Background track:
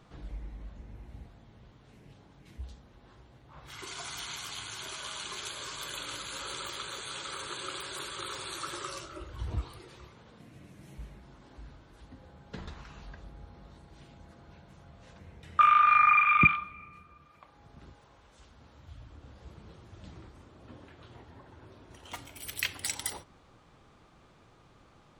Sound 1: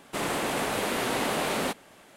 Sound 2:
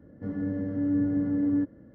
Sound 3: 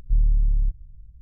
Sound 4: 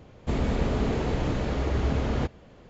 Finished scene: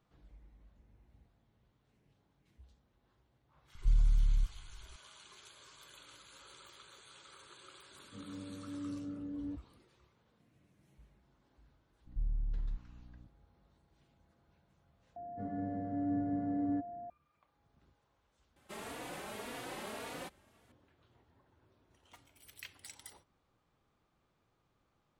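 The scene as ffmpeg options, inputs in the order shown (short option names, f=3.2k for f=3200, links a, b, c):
-filter_complex "[3:a]asplit=2[a][b];[2:a]asplit=2[c][d];[0:a]volume=-17.5dB[e];[c]lowpass=1.2k[f];[b]aeval=exprs='val(0)+0.0126*(sin(2*PI*60*n/s)+sin(2*PI*2*60*n/s)/2+sin(2*PI*3*60*n/s)/3+sin(2*PI*4*60*n/s)/4+sin(2*PI*5*60*n/s)/5)':c=same[g];[d]aeval=exprs='val(0)+0.02*sin(2*PI*700*n/s)':c=same[h];[1:a]asplit=2[i][j];[j]adelay=3.5,afreqshift=1.8[k];[i][k]amix=inputs=2:normalize=1[l];[e]asplit=2[m][n];[m]atrim=end=15.164[o];[h]atrim=end=1.94,asetpts=PTS-STARTPTS,volume=-9dB[p];[n]atrim=start=17.096[q];[a]atrim=end=1.21,asetpts=PTS-STARTPTS,volume=-8dB,afade=t=in:d=0.004:c=hsin,afade=t=out:st=1.206:d=0.004:c=hsin,adelay=3750[r];[f]atrim=end=1.94,asetpts=PTS-STARTPTS,volume=-16dB,afade=t=in:d=0.004:c=hsin,afade=t=out:st=1.936:d=0.004:c=hsin,adelay=7910[s];[g]atrim=end=1.21,asetpts=PTS-STARTPTS,volume=-16dB,afade=t=in:d=0.004:c=hsin,afade=t=out:st=1.206:d=0.004:c=hsin,adelay=12060[t];[l]atrim=end=2.16,asetpts=PTS-STARTPTS,volume=-13dB,afade=t=in:d=0.004:c=hsin,afade=t=out:st=2.156:d=0.004:c=hsin,adelay=18560[u];[o][p]acrossfade=d=0.004:c1=hsin:c2=hsin[v];[v][q]acrossfade=d=0.004:c1=hsin:c2=hsin[w];[w][r][s][t][u]amix=inputs=5:normalize=0"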